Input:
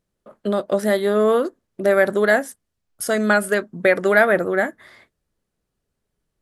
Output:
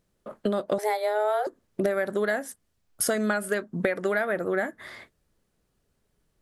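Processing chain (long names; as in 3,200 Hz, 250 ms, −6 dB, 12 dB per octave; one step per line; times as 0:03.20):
downward compressor 12 to 1, threshold −27 dBFS, peak gain reduction 17.5 dB
0:00.78–0:01.47: frequency shifter +210 Hz
level +4.5 dB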